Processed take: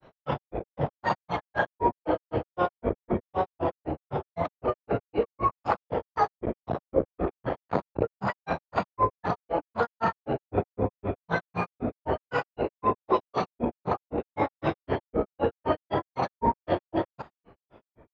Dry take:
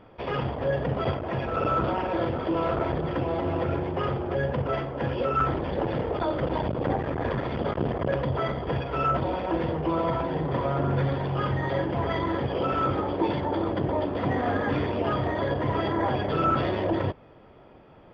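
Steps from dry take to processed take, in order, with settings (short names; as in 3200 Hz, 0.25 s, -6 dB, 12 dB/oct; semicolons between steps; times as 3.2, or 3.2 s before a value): dynamic EQ 730 Hz, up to +8 dB, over -41 dBFS, Q 0.95; grains 0.129 s, grains 3.9/s, pitch spread up and down by 7 st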